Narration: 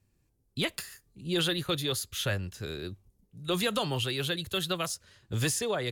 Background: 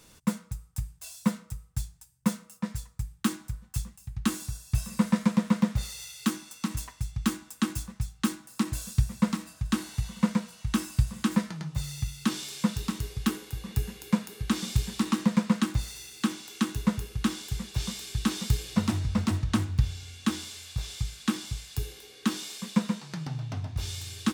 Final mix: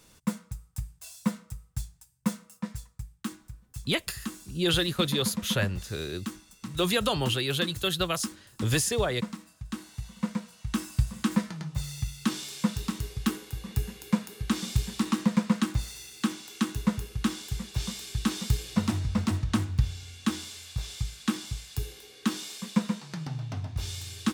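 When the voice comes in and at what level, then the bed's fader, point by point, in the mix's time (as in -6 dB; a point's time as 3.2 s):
3.30 s, +3.0 dB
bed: 2.6 s -2 dB
3.36 s -9 dB
9.72 s -9 dB
11.11 s -0.5 dB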